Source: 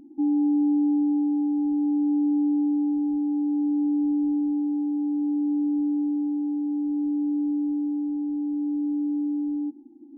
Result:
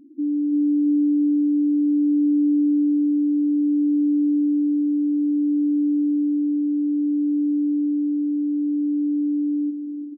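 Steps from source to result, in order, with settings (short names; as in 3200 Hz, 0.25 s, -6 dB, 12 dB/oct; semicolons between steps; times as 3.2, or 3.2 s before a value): spectral gate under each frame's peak -10 dB strong; feedback echo 0.338 s, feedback 54%, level -9 dB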